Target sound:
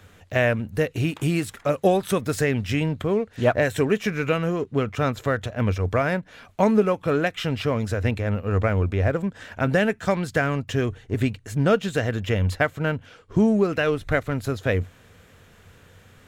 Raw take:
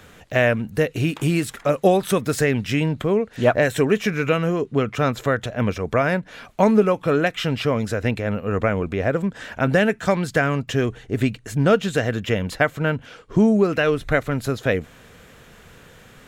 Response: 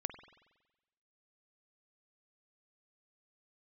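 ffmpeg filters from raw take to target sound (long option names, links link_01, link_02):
-filter_complex "[0:a]equalizer=frequency=92:width_type=o:width=0.31:gain=13,asplit=2[link_01][link_02];[link_02]aeval=exprs='sgn(val(0))*max(abs(val(0))-0.0224,0)':channel_layout=same,volume=-6.5dB[link_03];[link_01][link_03]amix=inputs=2:normalize=0,volume=-6dB"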